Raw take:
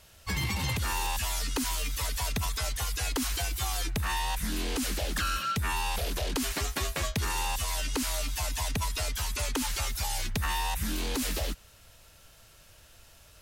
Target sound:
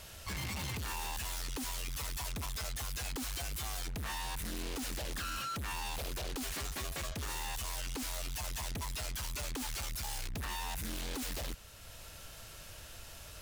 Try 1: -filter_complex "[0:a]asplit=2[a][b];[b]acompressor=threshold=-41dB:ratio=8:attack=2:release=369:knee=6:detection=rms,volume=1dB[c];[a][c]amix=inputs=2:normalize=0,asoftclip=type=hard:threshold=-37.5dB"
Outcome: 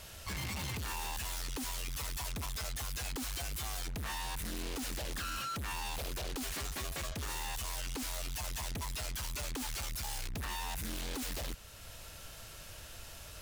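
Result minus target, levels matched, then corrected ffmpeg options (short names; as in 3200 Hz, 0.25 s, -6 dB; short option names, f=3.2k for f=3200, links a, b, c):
compressor: peak gain reduction -5 dB
-filter_complex "[0:a]asplit=2[a][b];[b]acompressor=threshold=-47dB:ratio=8:attack=2:release=369:knee=6:detection=rms,volume=1dB[c];[a][c]amix=inputs=2:normalize=0,asoftclip=type=hard:threshold=-37.5dB"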